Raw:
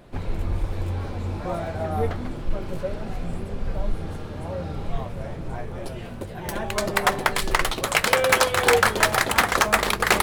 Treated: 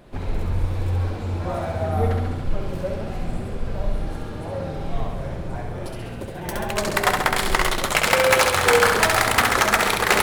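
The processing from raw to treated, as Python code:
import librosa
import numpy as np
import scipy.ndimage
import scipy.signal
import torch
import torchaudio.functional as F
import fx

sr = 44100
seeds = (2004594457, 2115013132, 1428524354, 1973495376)

y = fx.room_flutter(x, sr, wall_m=11.5, rt60_s=1.0)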